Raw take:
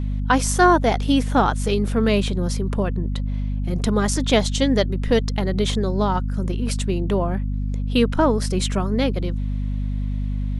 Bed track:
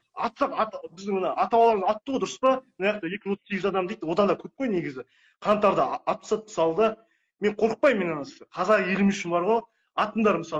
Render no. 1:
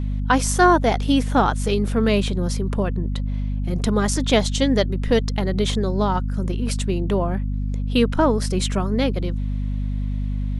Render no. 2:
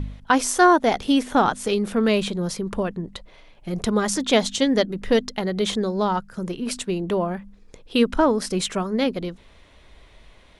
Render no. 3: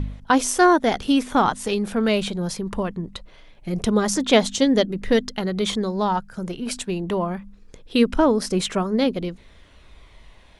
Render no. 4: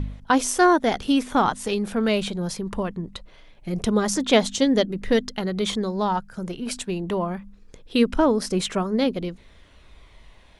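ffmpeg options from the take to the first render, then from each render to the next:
-af anull
-af "bandreject=f=50:t=h:w=4,bandreject=f=100:t=h:w=4,bandreject=f=150:t=h:w=4,bandreject=f=200:t=h:w=4,bandreject=f=250:t=h:w=4"
-af "aphaser=in_gain=1:out_gain=1:delay=1.4:decay=0.25:speed=0.23:type=triangular"
-af "volume=-1.5dB"

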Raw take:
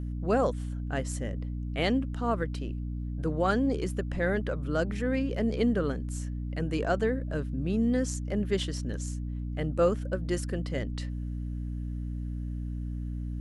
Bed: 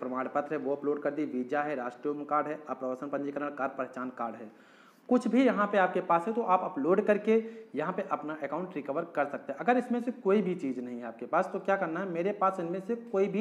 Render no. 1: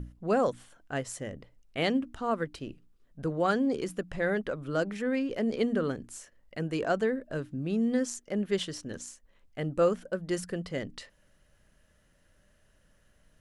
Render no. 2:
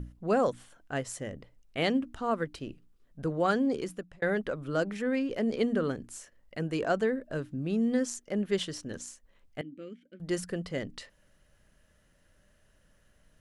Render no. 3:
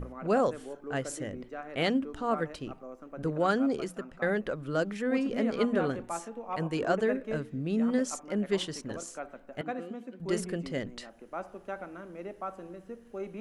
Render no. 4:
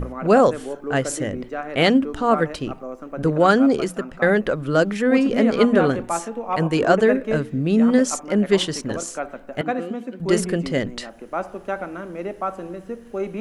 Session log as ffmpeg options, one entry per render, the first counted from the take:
-af "bandreject=f=60:t=h:w=6,bandreject=f=120:t=h:w=6,bandreject=f=180:t=h:w=6,bandreject=f=240:t=h:w=6,bandreject=f=300:t=h:w=6"
-filter_complex "[0:a]asettb=1/sr,asplit=3[a][b][c];[a]atrim=end=9.614[d];[b]atrim=start=9.61:end=10.2,asetpts=PTS-STARTPTS,afade=t=in:d=0.004:c=qsin,afade=t=out:st=0.586:d=0.004:c=qsin,asplit=3[e][f][g];[e]bandpass=f=270:t=q:w=8,volume=0dB[h];[f]bandpass=f=2.29k:t=q:w=8,volume=-6dB[i];[g]bandpass=f=3.01k:t=q:w=8,volume=-9dB[j];[h][i][j]amix=inputs=3:normalize=0[k];[c]atrim=start=10.196[l];[d][k]acrossfade=d=0.004:c1=hsin:c2=qsin[m];[m][l]acrossfade=d=0.004:c1=qsin:c2=hsin,asplit=2[n][o];[n]atrim=end=4.22,asetpts=PTS-STARTPTS,afade=t=out:st=3.61:d=0.61:c=qsin[p];[o]atrim=start=4.22,asetpts=PTS-STARTPTS,afade=t=in:d=0.004:c=hsin[q];[p][q]concat=n=2:v=0:a=1"
-filter_complex "[1:a]volume=-10.5dB[a];[0:a][a]amix=inputs=2:normalize=0"
-af "volume=11.5dB"

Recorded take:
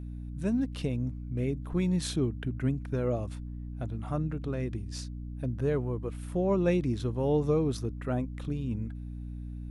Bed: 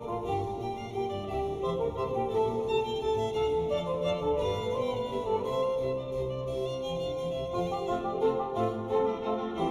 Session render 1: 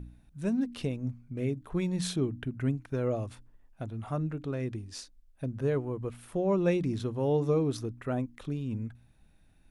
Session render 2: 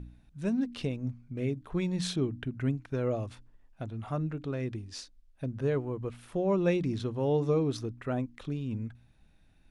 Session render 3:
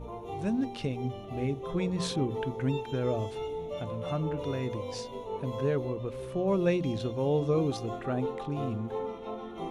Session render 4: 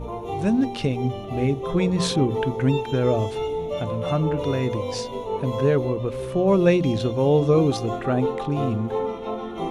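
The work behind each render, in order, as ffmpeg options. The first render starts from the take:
-af "bandreject=f=60:t=h:w=4,bandreject=f=120:t=h:w=4,bandreject=f=180:t=h:w=4,bandreject=f=240:t=h:w=4,bandreject=f=300:t=h:w=4"
-af "lowpass=4.4k,aemphasis=mode=production:type=50fm"
-filter_complex "[1:a]volume=-7.5dB[a];[0:a][a]amix=inputs=2:normalize=0"
-af "volume=9dB"

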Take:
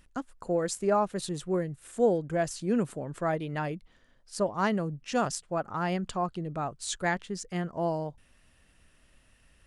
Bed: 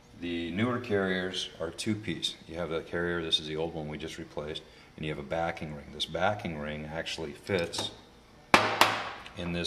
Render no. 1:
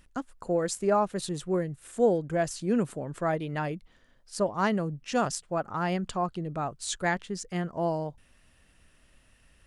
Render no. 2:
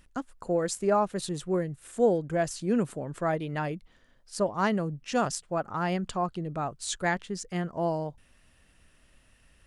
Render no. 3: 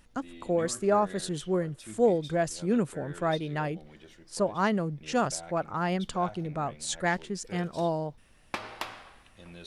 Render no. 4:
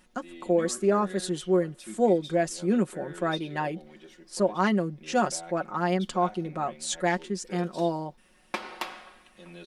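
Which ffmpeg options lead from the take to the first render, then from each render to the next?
-af "volume=1dB"
-af anull
-filter_complex "[1:a]volume=-14.5dB[a];[0:a][a]amix=inputs=2:normalize=0"
-af "lowshelf=f=170:t=q:w=1.5:g=-8.5,aecho=1:1:5.5:0.65"

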